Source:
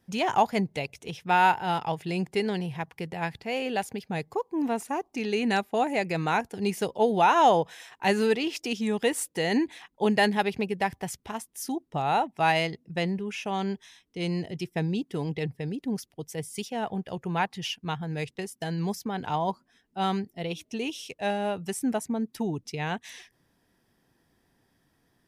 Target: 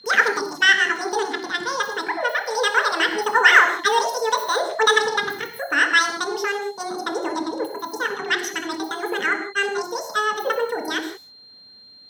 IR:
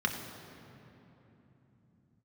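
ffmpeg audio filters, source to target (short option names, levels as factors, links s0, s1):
-filter_complex "[0:a]aeval=exprs='val(0)+0.00447*sin(2*PI*2000*n/s)':c=same,asetrate=92169,aresample=44100[s0];[1:a]atrim=start_sample=2205,afade=t=out:st=0.24:d=0.01,atrim=end_sample=11025[s1];[s0][s1]afir=irnorm=-1:irlink=0,volume=0.891"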